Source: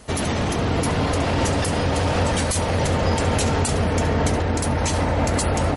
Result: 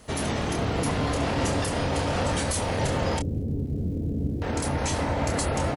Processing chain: 3.19–4.42 inverse Chebyshev low-pass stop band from 2100 Hz, stop band 80 dB; crackle 310/s -44 dBFS; doubler 28 ms -5.5 dB; gain -5.5 dB

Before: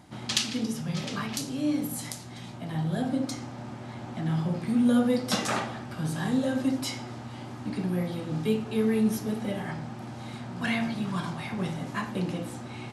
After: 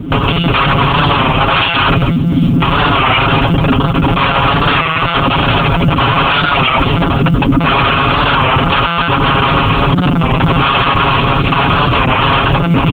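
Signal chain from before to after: compressor 10:1, threshold -27 dBFS, peak gain reduction 9.5 dB; resonant low shelf 440 Hz +11.5 dB, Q 3; wrapped overs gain 19 dB; fixed phaser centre 2800 Hz, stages 8; monotone LPC vocoder at 8 kHz 170 Hz; short-mantissa float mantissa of 6-bit; HPF 44 Hz; comb 7.3 ms, depth 62%; maximiser +21 dB; record warp 33 1/3 rpm, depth 100 cents; gain -1 dB

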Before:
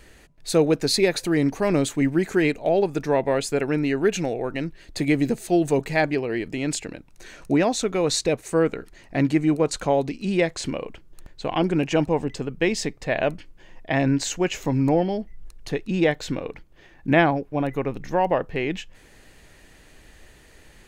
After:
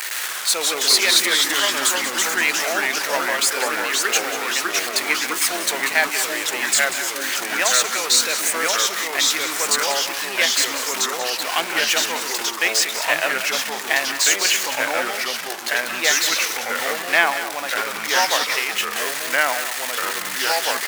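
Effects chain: zero-crossing step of -26 dBFS; Chebyshev high-pass 1300 Hz, order 2; high shelf 6200 Hz +4.5 dB; in parallel at -3 dB: level quantiser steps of 14 dB; on the sum: echoes that change speed 0.104 s, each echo -2 st, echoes 3; on a send: echo 0.188 s -11.5 dB; on the sum: gain +3.5 dB

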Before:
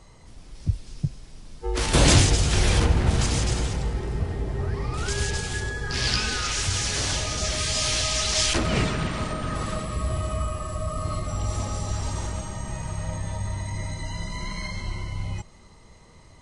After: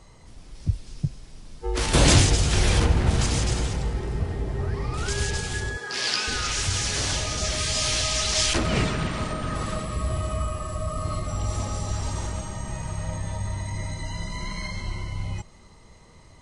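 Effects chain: 5.77–6.28 HPF 360 Hz 12 dB/oct

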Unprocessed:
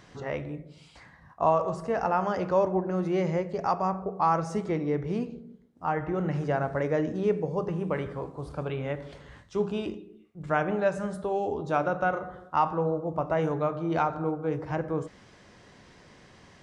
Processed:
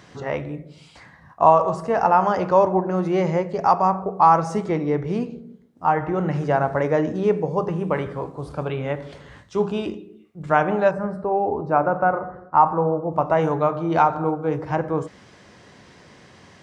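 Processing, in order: HPF 68 Hz; dynamic EQ 910 Hz, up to +6 dB, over -40 dBFS, Q 1.8; 10.91–13.13 running mean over 13 samples; gain +5.5 dB

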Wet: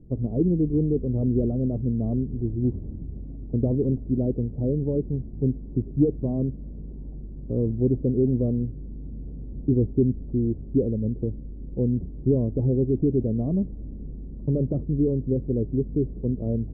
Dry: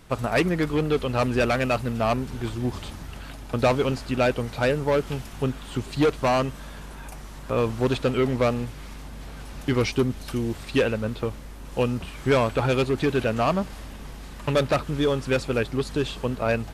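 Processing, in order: inverse Chebyshev low-pass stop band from 1700 Hz, stop band 70 dB; gain +3.5 dB

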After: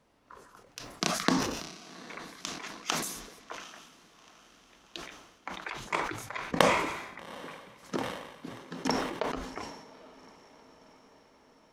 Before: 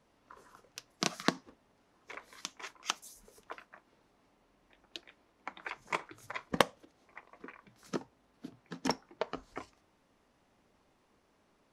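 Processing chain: diffused feedback echo 0.794 s, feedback 56%, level -15.5 dB; sustainer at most 55 dB/s; gain +2 dB

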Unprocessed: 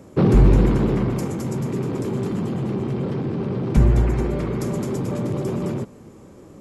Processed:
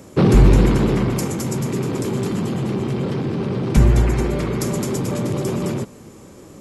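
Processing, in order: high shelf 2100 Hz +9 dB; gain +2 dB

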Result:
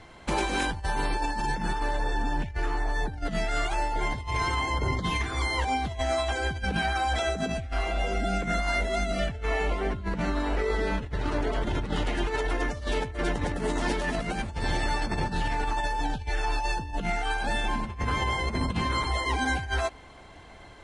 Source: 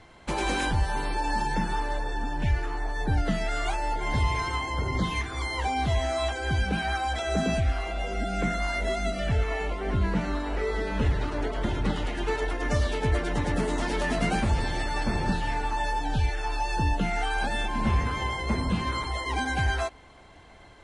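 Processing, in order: negative-ratio compressor -28 dBFS, ratio -0.5; gain +1 dB

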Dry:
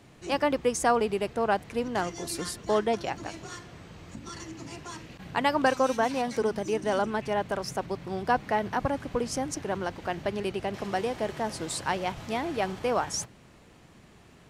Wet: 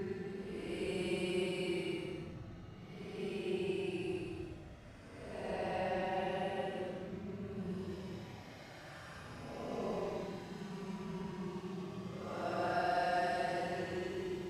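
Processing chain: Doppler pass-by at 2.97, 16 m/s, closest 6.2 m; Paulstretch 23×, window 0.05 s, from 10.61; mismatched tape noise reduction decoder only; gain +17.5 dB

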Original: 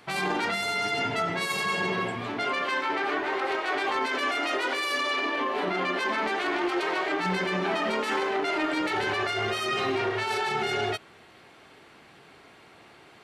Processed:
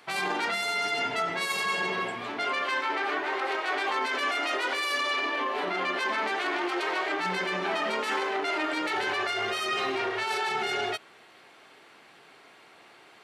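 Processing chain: HPF 440 Hz 6 dB/oct

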